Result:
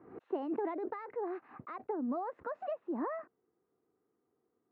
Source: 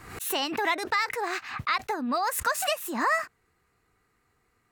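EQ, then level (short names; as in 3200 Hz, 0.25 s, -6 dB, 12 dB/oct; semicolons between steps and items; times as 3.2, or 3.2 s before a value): ladder band-pass 420 Hz, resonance 30%; air absorption 110 m; tilt -2 dB/oct; +4.5 dB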